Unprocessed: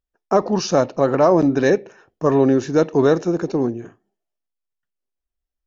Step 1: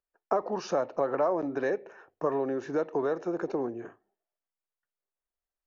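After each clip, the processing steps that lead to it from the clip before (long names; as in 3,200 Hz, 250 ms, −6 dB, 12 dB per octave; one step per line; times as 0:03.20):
mains-hum notches 50/100 Hz
downward compressor, threshold −22 dBFS, peak gain reduction 11.5 dB
three-way crossover with the lows and the highs turned down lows −14 dB, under 370 Hz, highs −14 dB, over 2,200 Hz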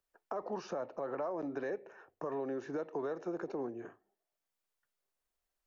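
brickwall limiter −22 dBFS, peak gain reduction 9 dB
multiband upward and downward compressor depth 40%
level −7 dB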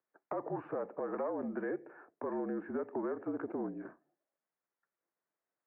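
stylus tracing distortion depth 0.07 ms
single-sideband voice off tune −54 Hz 200–2,100 Hz
level +1 dB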